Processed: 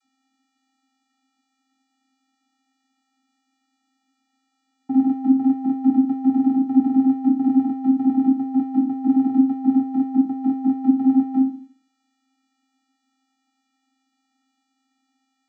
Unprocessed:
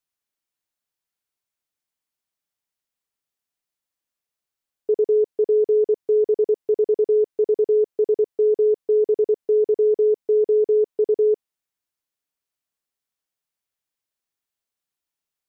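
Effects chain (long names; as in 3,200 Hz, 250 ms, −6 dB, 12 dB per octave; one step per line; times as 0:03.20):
peak hold with a decay on every bin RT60 0.48 s
channel vocoder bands 32, square 265 Hz
level +2 dB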